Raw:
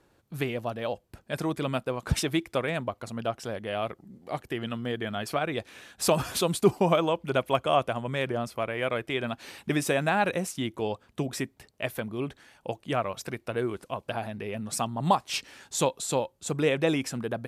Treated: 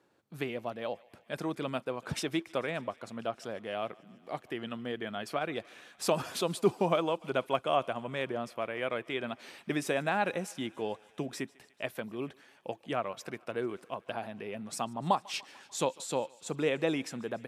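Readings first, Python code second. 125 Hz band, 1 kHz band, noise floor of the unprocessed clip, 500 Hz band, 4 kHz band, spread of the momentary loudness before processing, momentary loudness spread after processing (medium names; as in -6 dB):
-9.5 dB, -4.5 dB, -66 dBFS, -4.5 dB, -5.5 dB, 11 LU, 11 LU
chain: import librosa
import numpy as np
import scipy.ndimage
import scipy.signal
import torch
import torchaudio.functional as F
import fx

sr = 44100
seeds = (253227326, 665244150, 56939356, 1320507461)

y = scipy.signal.sosfilt(scipy.signal.butter(2, 170.0, 'highpass', fs=sr, output='sos'), x)
y = fx.high_shelf(y, sr, hz=8400.0, db=-7.5)
y = fx.echo_thinned(y, sr, ms=147, feedback_pct=77, hz=570.0, wet_db=-23)
y = F.gain(torch.from_numpy(y), -4.5).numpy()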